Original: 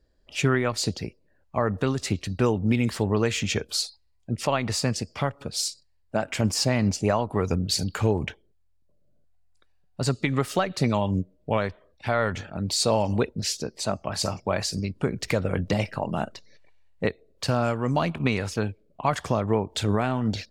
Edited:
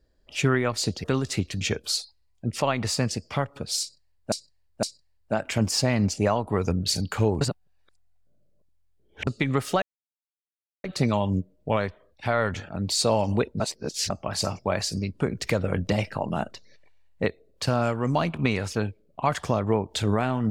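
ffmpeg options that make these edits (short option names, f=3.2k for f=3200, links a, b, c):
-filter_complex "[0:a]asplit=10[a][b][c][d][e][f][g][h][i][j];[a]atrim=end=1.042[k];[b]atrim=start=1.768:end=2.342[l];[c]atrim=start=3.458:end=6.172[m];[d]atrim=start=5.658:end=6.172[n];[e]atrim=start=5.658:end=8.242[o];[f]atrim=start=8.238:end=10.102,asetpts=PTS-STARTPTS,areverse[p];[g]atrim=start=10.098:end=10.65,asetpts=PTS-STARTPTS,afade=t=out:st=0.548:d=0.004:c=hsin,apad=pad_dur=1.02[q];[h]atrim=start=10.65:end=13.412,asetpts=PTS-STARTPTS,afade=t=in:d=0.004:c=hsin[r];[i]atrim=start=13.408:end=13.912,asetpts=PTS-STARTPTS,areverse[s];[j]atrim=start=13.908[t];[k][l]acrossfade=d=0.004:c1=hsin:c2=hsin[u];[u][m]acrossfade=d=0.004:c1=hsin:c2=hsin[v];[v][n]acrossfade=d=0.004:c1=hsin:c2=hsin[w];[w][o]acrossfade=d=0.004:c1=hsin:c2=hsin[x];[x][p]acrossfade=d=0.004:c1=hsin:c2=hsin[y];[q][r]concat=n=2:v=0:a=1[z];[y][z]acrossfade=d=0.004:c1=hsin:c2=hsin[aa];[aa][s]acrossfade=d=0.004:c1=hsin:c2=hsin[ab];[ab][t]acrossfade=d=0.004:c1=hsin:c2=hsin"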